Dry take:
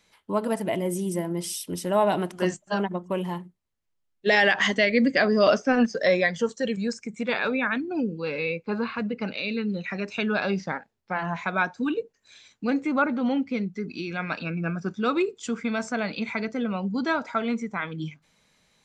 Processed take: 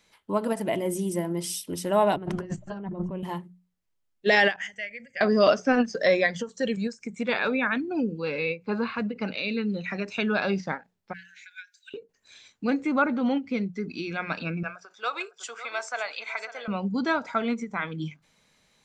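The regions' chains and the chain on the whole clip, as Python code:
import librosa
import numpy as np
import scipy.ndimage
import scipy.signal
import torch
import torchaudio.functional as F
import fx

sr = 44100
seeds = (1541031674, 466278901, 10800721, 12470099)

y = fx.chain(x, sr, fx.riaa(side='playback'),
    fx.over_compress(threshold_db=-32.0, ratio=-1.0), at=(2.16, 3.23))
y = fx.chain(y, sr, fx.tone_stack(knobs='5-5-5'),
    fx.fixed_phaser(hz=1100.0, stages=6), at=(4.56, 5.21))
y = fx.chain(y, sr, fx.brickwall_highpass(low_hz=1400.0),
    fx.differentiator(), at=(11.13, 11.94))
y = fx.chain(y, sr, fx.highpass(hz=610.0, slope=24),
    fx.echo_single(ms=551, db=-14.0), at=(14.63, 16.68))
y = fx.hum_notches(y, sr, base_hz=60, count=3)
y = fx.end_taper(y, sr, db_per_s=290.0)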